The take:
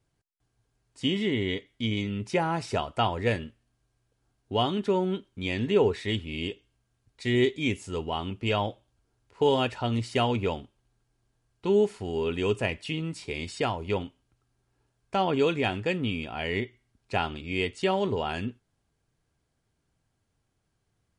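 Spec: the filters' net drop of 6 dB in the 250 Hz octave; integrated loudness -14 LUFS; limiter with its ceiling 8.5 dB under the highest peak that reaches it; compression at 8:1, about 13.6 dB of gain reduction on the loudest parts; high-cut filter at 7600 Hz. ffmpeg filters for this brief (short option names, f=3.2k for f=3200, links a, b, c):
-af "lowpass=7.6k,equalizer=f=250:t=o:g=-8.5,acompressor=threshold=-35dB:ratio=8,volume=27.5dB,alimiter=limit=-2dB:level=0:latency=1"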